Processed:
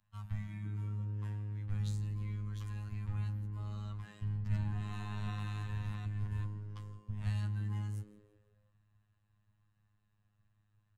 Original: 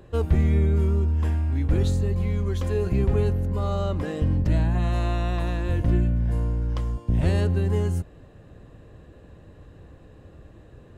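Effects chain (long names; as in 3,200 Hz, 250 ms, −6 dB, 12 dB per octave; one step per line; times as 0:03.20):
0:04.12–0:06.46: delay that plays each chunk backwards 387 ms, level −0.5 dB
Chebyshev band-stop filter 150–990 Hz, order 2
echo with shifted repeats 169 ms, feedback 52%, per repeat +110 Hz, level −20.5 dB
flanger 0.2 Hz, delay 4.5 ms, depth 9.9 ms, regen −61%
phases set to zero 104 Hz
multiband upward and downward expander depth 40%
level −8 dB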